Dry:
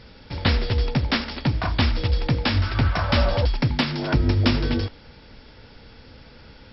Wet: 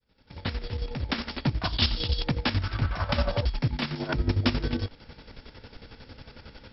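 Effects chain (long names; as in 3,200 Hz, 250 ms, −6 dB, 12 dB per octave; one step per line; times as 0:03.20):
fade in at the beginning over 1.22 s
0:01.64–0:02.24: flat-topped bell 3,900 Hz +12 dB 1.1 octaves
in parallel at +3 dB: downward compressor, threshold −35 dBFS, peak gain reduction 21.5 dB
on the sum: square-wave tremolo 11 Hz, depth 60%, duty 45%
level −5.5 dB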